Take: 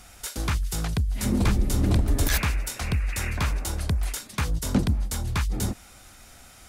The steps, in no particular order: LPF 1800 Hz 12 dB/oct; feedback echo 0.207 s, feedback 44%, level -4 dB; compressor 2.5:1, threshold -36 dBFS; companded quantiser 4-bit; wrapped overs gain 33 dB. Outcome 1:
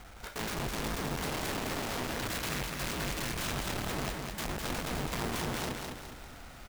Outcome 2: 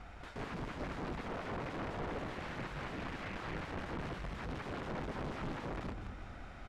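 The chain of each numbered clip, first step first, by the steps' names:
LPF > compressor > wrapped overs > companded quantiser > feedback echo; companded quantiser > compressor > feedback echo > wrapped overs > LPF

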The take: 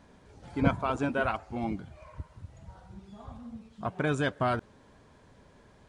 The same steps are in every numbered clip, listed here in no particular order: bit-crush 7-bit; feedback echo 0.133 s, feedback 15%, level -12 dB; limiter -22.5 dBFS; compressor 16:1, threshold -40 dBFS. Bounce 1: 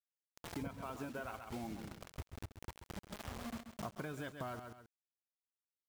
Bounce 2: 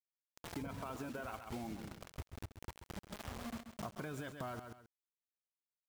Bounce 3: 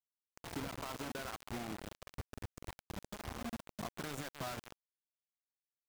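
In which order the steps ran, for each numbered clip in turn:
bit-crush > feedback echo > compressor > limiter; bit-crush > limiter > feedback echo > compressor; limiter > feedback echo > compressor > bit-crush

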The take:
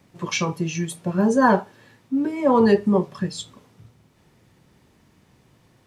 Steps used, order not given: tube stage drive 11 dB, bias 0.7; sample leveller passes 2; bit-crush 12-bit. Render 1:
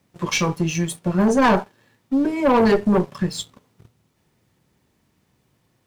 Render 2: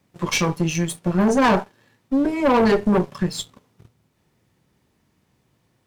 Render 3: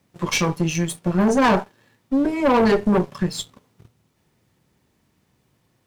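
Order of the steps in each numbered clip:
tube stage > sample leveller > bit-crush; sample leveller > bit-crush > tube stage; sample leveller > tube stage > bit-crush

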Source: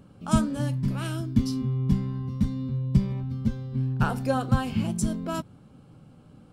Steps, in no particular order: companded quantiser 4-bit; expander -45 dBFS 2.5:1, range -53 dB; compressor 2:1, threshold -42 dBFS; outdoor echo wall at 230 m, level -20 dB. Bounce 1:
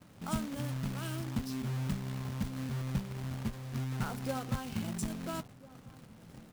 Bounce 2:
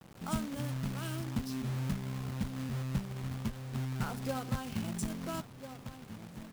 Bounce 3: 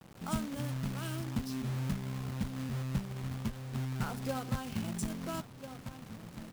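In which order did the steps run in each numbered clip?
compressor > companded quantiser > expander > outdoor echo; expander > outdoor echo > compressor > companded quantiser; outdoor echo > expander > compressor > companded quantiser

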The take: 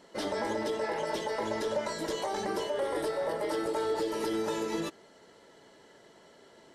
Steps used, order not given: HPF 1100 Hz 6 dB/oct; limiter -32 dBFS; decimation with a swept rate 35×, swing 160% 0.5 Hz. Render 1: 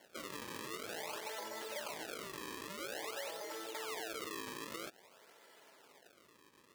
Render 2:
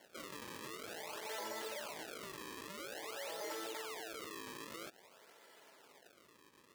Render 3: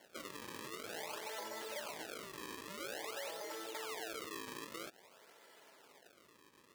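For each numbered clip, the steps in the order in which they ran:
decimation with a swept rate > limiter > HPF; decimation with a swept rate > HPF > limiter; limiter > decimation with a swept rate > HPF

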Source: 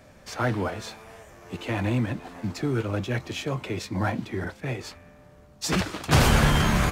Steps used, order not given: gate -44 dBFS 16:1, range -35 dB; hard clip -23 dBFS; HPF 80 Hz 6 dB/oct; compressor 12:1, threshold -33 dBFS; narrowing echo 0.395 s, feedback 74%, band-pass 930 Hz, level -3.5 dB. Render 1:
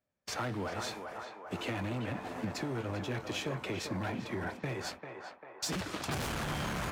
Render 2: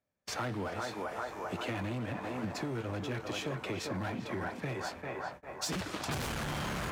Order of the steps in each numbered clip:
hard clip > HPF > compressor > gate > narrowing echo; narrowing echo > hard clip > HPF > gate > compressor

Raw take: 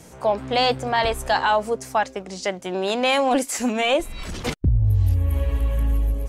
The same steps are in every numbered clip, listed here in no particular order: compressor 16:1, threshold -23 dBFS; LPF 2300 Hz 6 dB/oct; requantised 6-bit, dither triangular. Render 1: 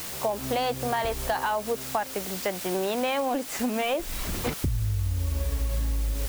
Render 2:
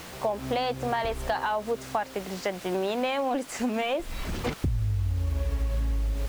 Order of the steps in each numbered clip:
LPF > requantised > compressor; requantised > compressor > LPF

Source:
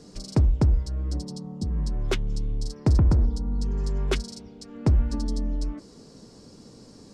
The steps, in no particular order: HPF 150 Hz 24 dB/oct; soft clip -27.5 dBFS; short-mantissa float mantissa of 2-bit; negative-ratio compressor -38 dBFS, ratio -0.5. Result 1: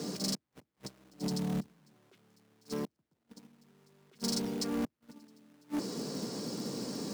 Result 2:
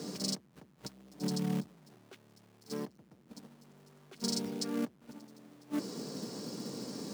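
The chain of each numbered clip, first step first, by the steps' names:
negative-ratio compressor > short-mantissa float > HPF > soft clip; soft clip > short-mantissa float > negative-ratio compressor > HPF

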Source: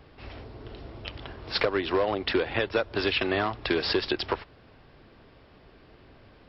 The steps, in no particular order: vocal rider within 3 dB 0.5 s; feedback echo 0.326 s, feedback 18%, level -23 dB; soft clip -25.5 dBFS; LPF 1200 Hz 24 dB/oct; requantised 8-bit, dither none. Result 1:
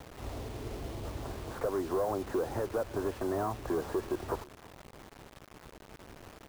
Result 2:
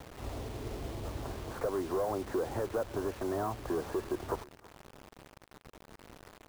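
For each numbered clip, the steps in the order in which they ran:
vocal rider > soft clip > LPF > requantised > feedback echo; soft clip > vocal rider > LPF > requantised > feedback echo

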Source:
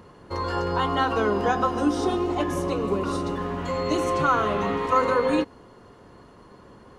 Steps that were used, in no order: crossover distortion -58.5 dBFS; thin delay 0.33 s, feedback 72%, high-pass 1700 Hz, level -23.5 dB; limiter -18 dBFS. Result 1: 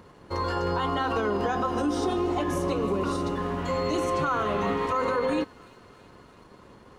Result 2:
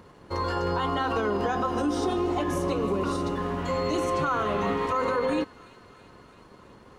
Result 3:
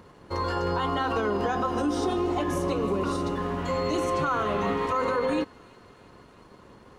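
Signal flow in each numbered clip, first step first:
thin delay > crossover distortion > limiter; crossover distortion > thin delay > limiter; crossover distortion > limiter > thin delay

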